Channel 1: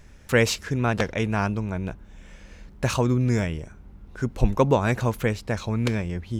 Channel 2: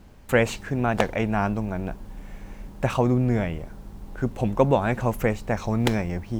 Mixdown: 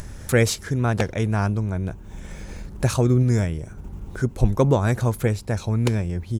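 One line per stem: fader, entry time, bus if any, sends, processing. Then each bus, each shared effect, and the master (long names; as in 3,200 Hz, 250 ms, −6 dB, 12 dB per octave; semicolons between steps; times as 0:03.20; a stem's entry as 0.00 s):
0.0 dB, 0.00 s, no send, graphic EQ with 15 bands 100 Hz +6 dB, 2,500 Hz −7 dB, 10,000 Hz +8 dB
−8.0 dB, 0.4 ms, no send, EQ curve with evenly spaced ripples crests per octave 0.72, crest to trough 12 dB; output level in coarse steps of 19 dB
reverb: not used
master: upward compression, threshold −25 dBFS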